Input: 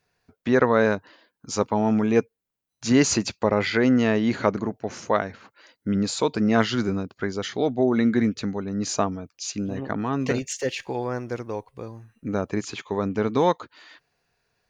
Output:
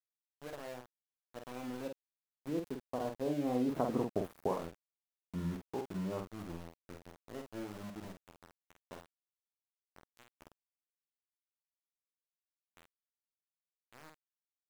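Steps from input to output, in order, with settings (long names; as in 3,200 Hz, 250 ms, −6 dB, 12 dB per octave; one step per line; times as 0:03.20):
running median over 5 samples
source passing by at 0:04.08, 50 m/s, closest 5.3 metres
inverse Chebyshev band-stop filter 2,100–6,100 Hz, stop band 50 dB
downward compressor 4 to 1, threshold −37 dBFS, peak gain reduction 11.5 dB
centre clipping without the shift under −49.5 dBFS
on a send: ambience of single reflections 12 ms −12.5 dB, 48 ms −5 dB
on the sum: level +5.5 dB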